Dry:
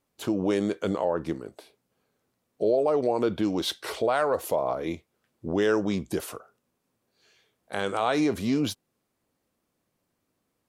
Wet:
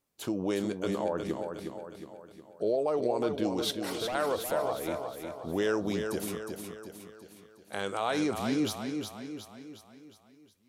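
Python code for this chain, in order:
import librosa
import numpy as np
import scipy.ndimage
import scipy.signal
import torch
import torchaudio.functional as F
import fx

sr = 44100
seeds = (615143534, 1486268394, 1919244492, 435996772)

p1 = fx.high_shelf(x, sr, hz=4100.0, db=5.5)
p2 = fx.overload_stage(p1, sr, gain_db=26.0, at=(3.71, 4.15))
p3 = p2 + fx.echo_feedback(p2, sr, ms=362, feedback_pct=50, wet_db=-6, dry=0)
y = p3 * 10.0 ** (-5.5 / 20.0)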